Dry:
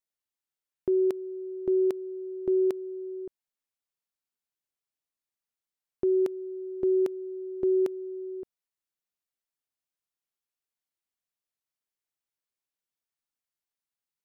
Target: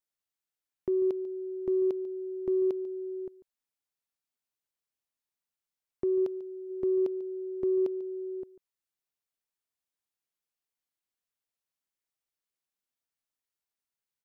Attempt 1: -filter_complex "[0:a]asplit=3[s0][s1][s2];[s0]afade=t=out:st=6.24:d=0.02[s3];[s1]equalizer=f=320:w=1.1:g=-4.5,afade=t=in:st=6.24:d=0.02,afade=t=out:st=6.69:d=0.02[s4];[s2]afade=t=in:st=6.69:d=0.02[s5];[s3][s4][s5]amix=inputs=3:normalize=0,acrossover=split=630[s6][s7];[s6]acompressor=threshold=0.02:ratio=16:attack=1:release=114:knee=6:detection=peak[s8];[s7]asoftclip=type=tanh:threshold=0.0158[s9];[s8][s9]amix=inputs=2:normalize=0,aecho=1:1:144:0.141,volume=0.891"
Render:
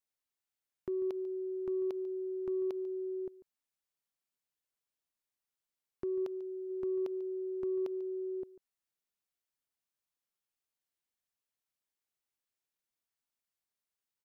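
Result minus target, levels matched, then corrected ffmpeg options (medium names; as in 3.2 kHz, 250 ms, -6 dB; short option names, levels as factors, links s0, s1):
compression: peak gain reduction +9.5 dB
-filter_complex "[0:a]asplit=3[s0][s1][s2];[s0]afade=t=out:st=6.24:d=0.02[s3];[s1]equalizer=f=320:w=1.1:g=-4.5,afade=t=in:st=6.24:d=0.02,afade=t=out:st=6.69:d=0.02[s4];[s2]afade=t=in:st=6.69:d=0.02[s5];[s3][s4][s5]amix=inputs=3:normalize=0,acrossover=split=630[s6][s7];[s6]acompressor=threshold=0.075:ratio=16:attack=1:release=114:knee=6:detection=peak[s8];[s7]asoftclip=type=tanh:threshold=0.0158[s9];[s8][s9]amix=inputs=2:normalize=0,aecho=1:1:144:0.141,volume=0.891"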